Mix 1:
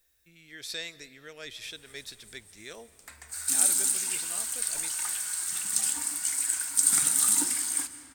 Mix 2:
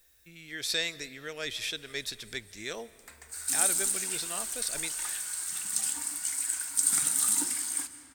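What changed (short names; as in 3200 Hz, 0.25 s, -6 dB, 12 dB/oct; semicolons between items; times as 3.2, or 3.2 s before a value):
speech +6.5 dB; background -3.0 dB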